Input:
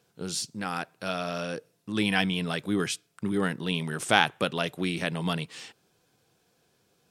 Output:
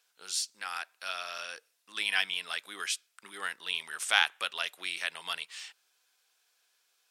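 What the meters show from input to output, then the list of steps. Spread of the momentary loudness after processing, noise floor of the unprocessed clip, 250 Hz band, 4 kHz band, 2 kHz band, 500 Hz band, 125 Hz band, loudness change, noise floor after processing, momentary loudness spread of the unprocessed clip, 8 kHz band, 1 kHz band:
15 LU, -70 dBFS, -30.0 dB, 0.0 dB, -1.5 dB, -16.5 dB, under -35 dB, -3.5 dB, -74 dBFS, 10 LU, 0.0 dB, -7.5 dB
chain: high-pass 1.4 kHz 12 dB/octave

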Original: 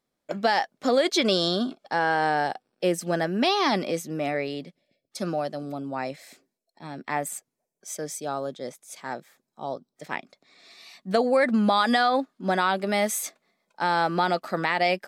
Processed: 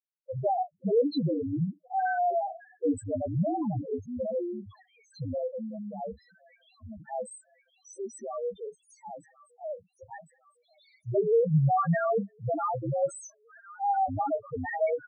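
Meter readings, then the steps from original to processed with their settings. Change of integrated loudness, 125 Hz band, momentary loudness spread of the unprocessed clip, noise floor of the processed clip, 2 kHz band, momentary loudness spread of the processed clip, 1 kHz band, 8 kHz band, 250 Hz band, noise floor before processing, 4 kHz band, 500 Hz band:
-4.5 dB, +5.0 dB, 17 LU, -72 dBFS, -13.5 dB, 20 LU, -5.0 dB, -13.5 dB, -5.0 dB, -83 dBFS, under -20 dB, -3.0 dB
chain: expander -48 dBFS; frequency shift -69 Hz; doubling 31 ms -9.5 dB; feedback echo behind a high-pass 1062 ms, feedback 54%, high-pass 1.4 kHz, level -14 dB; loudest bins only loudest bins 2

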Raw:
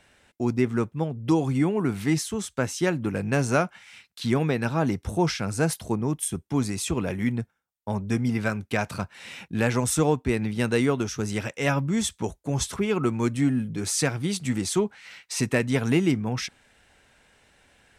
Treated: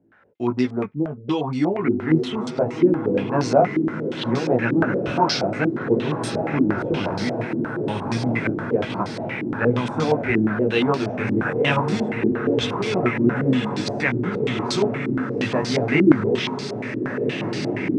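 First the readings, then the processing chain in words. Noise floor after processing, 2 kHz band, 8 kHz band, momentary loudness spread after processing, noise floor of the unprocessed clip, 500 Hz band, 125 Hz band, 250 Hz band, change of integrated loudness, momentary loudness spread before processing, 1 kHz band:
-31 dBFS, +5.0 dB, -9.5 dB, 7 LU, -68 dBFS, +6.5 dB, +1.0 dB, +5.0 dB, +4.0 dB, 9 LU, +6.5 dB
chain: high-pass 120 Hz; chorus voices 2, 0.22 Hz, delay 18 ms, depth 2.4 ms; on a send: echo that smears into a reverb 1712 ms, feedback 61%, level -4.5 dB; on the sum: step-sequenced low-pass 8.5 Hz 320–4600 Hz; trim +3.5 dB

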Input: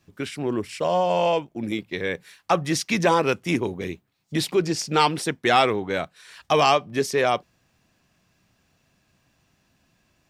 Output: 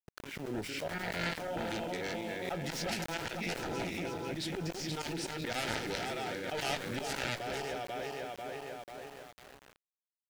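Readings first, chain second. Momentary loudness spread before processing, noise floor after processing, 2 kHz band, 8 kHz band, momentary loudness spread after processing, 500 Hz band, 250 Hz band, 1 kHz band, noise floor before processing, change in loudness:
10 LU, under -85 dBFS, -9.5 dB, -9.5 dB, 9 LU, -14.5 dB, -12.5 dB, -16.0 dB, -68 dBFS, -14.0 dB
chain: backward echo that repeats 246 ms, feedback 69%, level -7.5 dB; slow attack 129 ms; Chebyshev shaper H 6 -18 dB, 7 -12 dB, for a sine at -4.5 dBFS; Butterworth band-stop 1.1 kHz, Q 3.7; slow attack 184 ms; level-controlled noise filter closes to 1.7 kHz, open at -26.5 dBFS; bass shelf 120 Hz -3 dB; compression 2.5:1, threshold -41 dBFS, peak gain reduction 15.5 dB; doubling 18 ms -13.5 dB; small samples zeroed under -50.5 dBFS; swell ahead of each attack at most 34 dB/s; trim +2.5 dB

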